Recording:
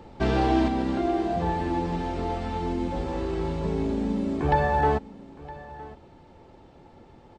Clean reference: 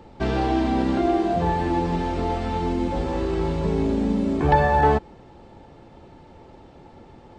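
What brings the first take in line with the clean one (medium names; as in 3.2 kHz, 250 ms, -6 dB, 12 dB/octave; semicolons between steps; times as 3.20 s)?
inverse comb 964 ms -19 dB; gain correction +4.5 dB, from 0.68 s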